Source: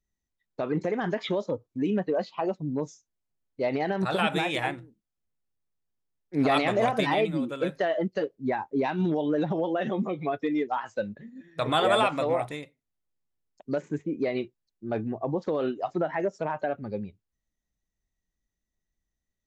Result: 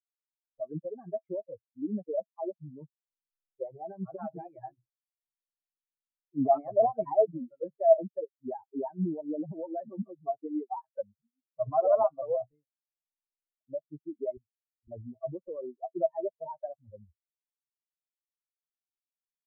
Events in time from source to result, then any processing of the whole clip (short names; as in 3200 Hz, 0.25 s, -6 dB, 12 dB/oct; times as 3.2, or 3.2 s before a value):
2.81–3.79 comb 5.6 ms
14.37–14.88 inverse Chebyshev band-stop 880–3600 Hz, stop band 80 dB
whole clip: per-bin expansion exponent 3; steep low-pass 1000 Hz 36 dB/oct; bell 650 Hz +15 dB 0.22 oct; gain -1 dB